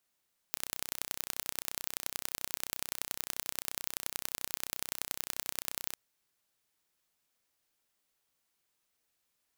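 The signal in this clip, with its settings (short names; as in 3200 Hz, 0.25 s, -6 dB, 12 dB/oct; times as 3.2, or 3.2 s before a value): pulse train 31.5/s, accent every 3, -5.5 dBFS 5.42 s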